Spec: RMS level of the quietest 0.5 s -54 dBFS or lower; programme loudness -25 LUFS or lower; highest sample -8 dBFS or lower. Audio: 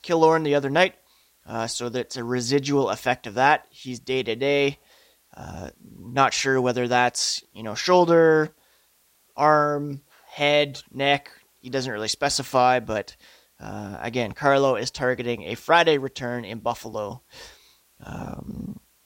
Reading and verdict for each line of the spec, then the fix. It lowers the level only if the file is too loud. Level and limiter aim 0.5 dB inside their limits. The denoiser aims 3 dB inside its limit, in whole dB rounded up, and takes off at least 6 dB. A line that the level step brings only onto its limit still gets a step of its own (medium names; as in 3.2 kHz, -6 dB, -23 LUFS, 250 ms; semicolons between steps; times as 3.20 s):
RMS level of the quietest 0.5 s -63 dBFS: pass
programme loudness -22.5 LUFS: fail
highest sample -4.0 dBFS: fail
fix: trim -3 dB; peak limiter -8.5 dBFS